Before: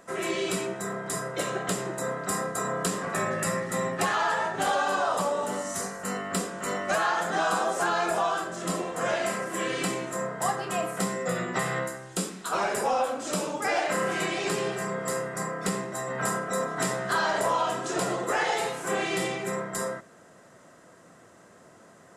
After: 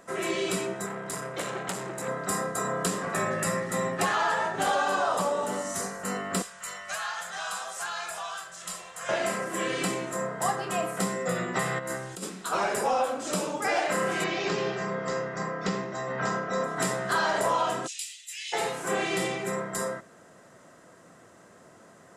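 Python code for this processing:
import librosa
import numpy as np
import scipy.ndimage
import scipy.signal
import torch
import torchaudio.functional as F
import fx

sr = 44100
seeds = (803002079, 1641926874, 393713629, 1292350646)

y = fx.transformer_sat(x, sr, knee_hz=1700.0, at=(0.86, 2.08))
y = fx.tone_stack(y, sr, knobs='10-0-10', at=(6.42, 9.09))
y = fx.over_compress(y, sr, threshold_db=-36.0, ratio=-1.0, at=(11.78, 12.22), fade=0.02)
y = fx.steep_lowpass(y, sr, hz=6500.0, slope=48, at=(14.24, 16.64))
y = fx.steep_highpass(y, sr, hz=2400.0, slope=48, at=(17.86, 18.52), fade=0.02)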